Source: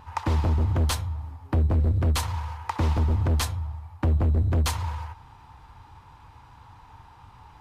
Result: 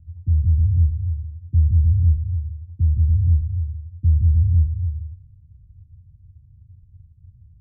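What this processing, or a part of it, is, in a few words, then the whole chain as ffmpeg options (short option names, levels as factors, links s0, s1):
the neighbour's flat through the wall: -af "lowpass=f=160:w=0.5412,lowpass=f=160:w=1.3066,equalizer=f=88:t=o:w=0.44:g=7,volume=1.19"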